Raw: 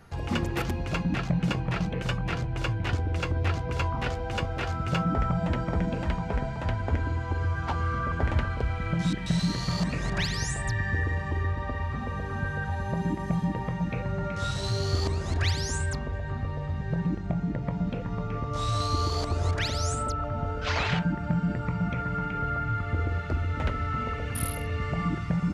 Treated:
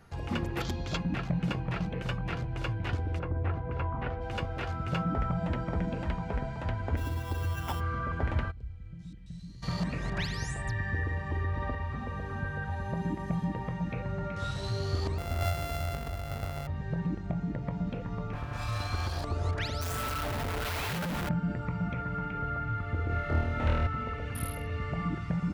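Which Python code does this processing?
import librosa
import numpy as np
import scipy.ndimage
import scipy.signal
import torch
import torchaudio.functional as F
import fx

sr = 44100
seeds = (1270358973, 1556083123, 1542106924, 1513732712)

y = fx.spec_box(x, sr, start_s=0.61, length_s=0.36, low_hz=3100.0, high_hz=7700.0, gain_db=11)
y = fx.lowpass(y, sr, hz=fx.line((3.18, 1300.0), (4.2, 2200.0)), slope=12, at=(3.18, 4.2), fade=0.02)
y = fx.sample_hold(y, sr, seeds[0], rate_hz=4300.0, jitter_pct=0, at=(6.96, 7.79), fade=0.02)
y = fx.tone_stack(y, sr, knobs='10-0-1', at=(8.5, 9.62), fade=0.02)
y = fx.env_flatten(y, sr, amount_pct=50, at=(11.3, 11.75))
y = fx.sample_sort(y, sr, block=64, at=(15.18, 16.67))
y = fx.lower_of_two(y, sr, delay_ms=1.2, at=(18.33, 19.24))
y = fx.clip_1bit(y, sr, at=(19.81, 21.29))
y = fx.room_flutter(y, sr, wall_m=4.4, rt60_s=1.1, at=(23.07, 23.87))
y = fx.dynamic_eq(y, sr, hz=7000.0, q=0.79, threshold_db=-52.0, ratio=4.0, max_db=-6)
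y = F.gain(torch.from_numpy(y), -4.0).numpy()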